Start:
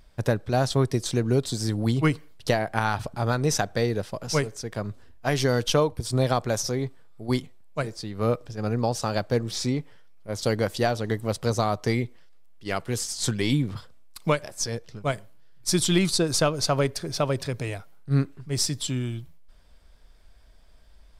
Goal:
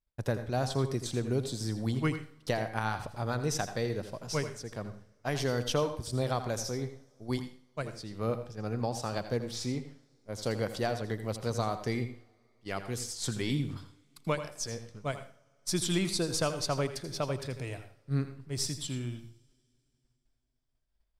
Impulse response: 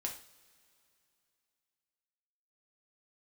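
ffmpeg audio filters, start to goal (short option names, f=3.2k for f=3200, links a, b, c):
-filter_complex "[0:a]agate=range=-33dB:threshold=-38dB:ratio=3:detection=peak,asplit=2[a][b];[1:a]atrim=start_sample=2205,adelay=82[c];[b][c]afir=irnorm=-1:irlink=0,volume=-9.5dB[d];[a][d]amix=inputs=2:normalize=0,volume=-8dB"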